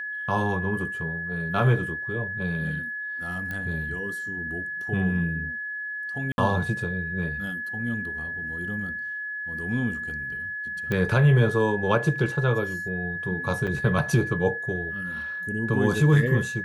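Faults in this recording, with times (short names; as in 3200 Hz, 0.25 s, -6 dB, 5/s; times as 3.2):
tone 1700 Hz -30 dBFS
3.51 pop -20 dBFS
6.32–6.38 gap 61 ms
10.92 pop -15 dBFS
13.67–13.68 gap 5.8 ms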